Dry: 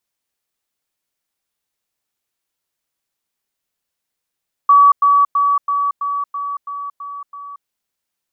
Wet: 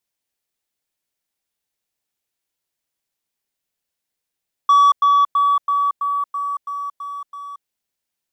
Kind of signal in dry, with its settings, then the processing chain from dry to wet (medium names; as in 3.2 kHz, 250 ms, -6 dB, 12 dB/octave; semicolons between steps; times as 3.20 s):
level ladder 1.14 kHz -5.5 dBFS, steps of -3 dB, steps 9, 0.23 s 0.10 s
peaking EQ 1.2 kHz -4 dB 0.61 oct; waveshaping leveller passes 1